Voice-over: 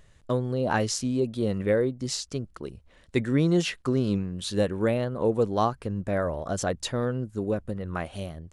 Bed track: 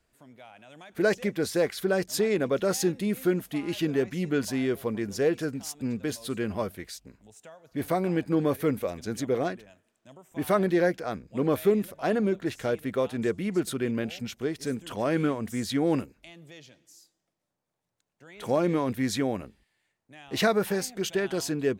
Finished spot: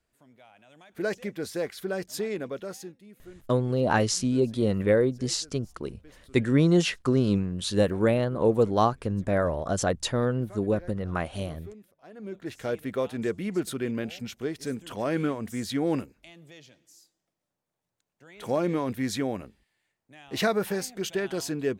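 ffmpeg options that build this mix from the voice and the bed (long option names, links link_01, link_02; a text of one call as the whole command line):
ffmpeg -i stem1.wav -i stem2.wav -filter_complex "[0:a]adelay=3200,volume=2dB[link_01];[1:a]volume=16dB,afade=type=out:start_time=2.27:duration=0.72:silence=0.133352,afade=type=in:start_time=12.14:duration=0.61:silence=0.0841395[link_02];[link_01][link_02]amix=inputs=2:normalize=0" out.wav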